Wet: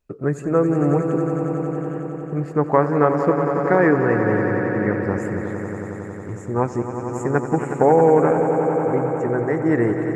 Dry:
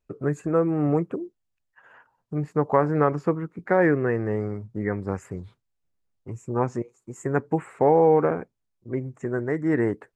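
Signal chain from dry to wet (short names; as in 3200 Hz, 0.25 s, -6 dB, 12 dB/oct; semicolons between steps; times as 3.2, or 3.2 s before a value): swelling echo 91 ms, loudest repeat 5, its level -10.5 dB; gain +3.5 dB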